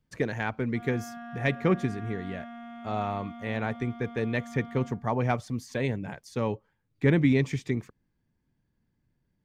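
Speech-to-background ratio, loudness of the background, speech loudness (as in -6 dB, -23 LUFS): 14.0 dB, -43.5 LUFS, -29.5 LUFS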